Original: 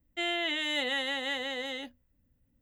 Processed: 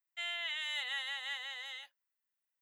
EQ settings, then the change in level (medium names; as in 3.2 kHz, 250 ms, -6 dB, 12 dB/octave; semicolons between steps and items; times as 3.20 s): high-pass 920 Hz 24 dB/octave; -6.0 dB